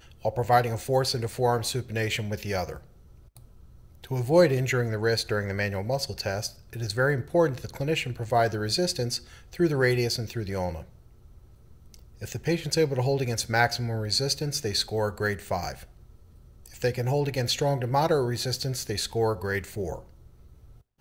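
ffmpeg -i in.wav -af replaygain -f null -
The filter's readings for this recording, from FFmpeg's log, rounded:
track_gain = +6.8 dB
track_peak = 0.300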